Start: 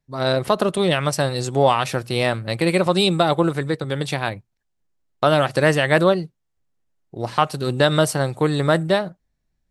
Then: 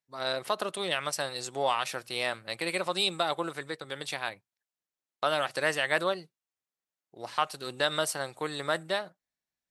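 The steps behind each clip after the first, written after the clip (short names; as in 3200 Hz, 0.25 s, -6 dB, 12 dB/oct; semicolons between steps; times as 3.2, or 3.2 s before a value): HPF 1100 Hz 6 dB/oct; gain -6 dB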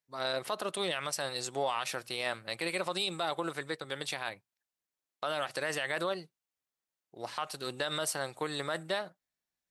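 limiter -21.5 dBFS, peak gain reduction 9.5 dB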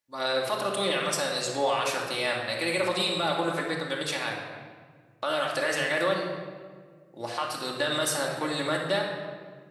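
reverb RT60 1.7 s, pre-delay 3 ms, DRR -1.5 dB; gain +3 dB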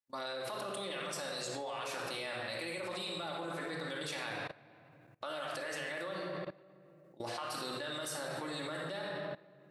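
level quantiser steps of 20 dB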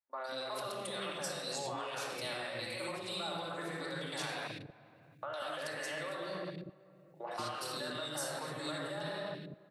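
three bands offset in time mids, highs, lows 0.11/0.19 s, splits 400/2100 Hz; gain +1.5 dB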